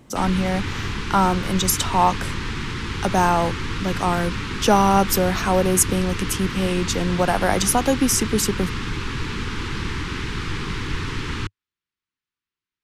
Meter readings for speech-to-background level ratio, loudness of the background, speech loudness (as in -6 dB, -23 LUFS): 7.0 dB, -28.0 LUFS, -21.0 LUFS